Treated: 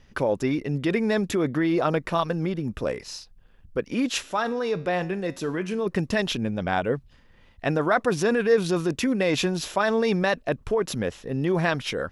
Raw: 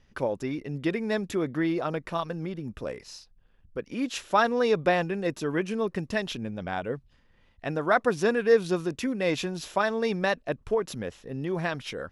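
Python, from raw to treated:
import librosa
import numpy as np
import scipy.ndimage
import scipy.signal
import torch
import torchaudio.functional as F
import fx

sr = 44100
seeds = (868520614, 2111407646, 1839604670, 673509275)

p1 = fx.over_compress(x, sr, threshold_db=-28.0, ratio=-0.5)
p2 = x + F.gain(torch.from_numpy(p1), -1.0).numpy()
y = fx.comb_fb(p2, sr, f0_hz=90.0, decay_s=0.49, harmonics='all', damping=0.0, mix_pct=50, at=(4.22, 5.85), fade=0.02)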